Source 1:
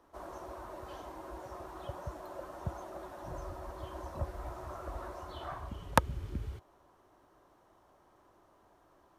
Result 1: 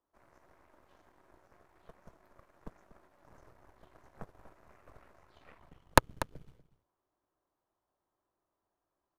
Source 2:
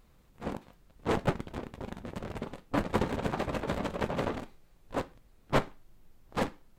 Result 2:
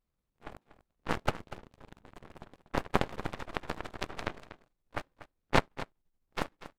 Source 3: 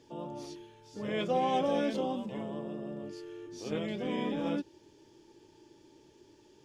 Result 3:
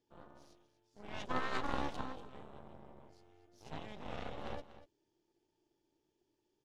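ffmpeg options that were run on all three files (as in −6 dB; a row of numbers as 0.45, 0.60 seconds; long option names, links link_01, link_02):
-af "aeval=exprs='0.376*(cos(1*acos(clip(val(0)/0.376,-1,1)))-cos(1*PI/2))+0.119*(cos(2*acos(clip(val(0)/0.376,-1,1)))-cos(2*PI/2))+0.0335*(cos(3*acos(clip(val(0)/0.376,-1,1)))-cos(3*PI/2))+0.0335*(cos(6*acos(clip(val(0)/0.376,-1,1)))-cos(6*PI/2))+0.0422*(cos(7*acos(clip(val(0)/0.376,-1,1)))-cos(7*PI/2))':channel_layout=same,aecho=1:1:241:0.188,volume=3.5dB"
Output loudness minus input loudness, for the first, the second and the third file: +10.5, −1.5, −8.5 LU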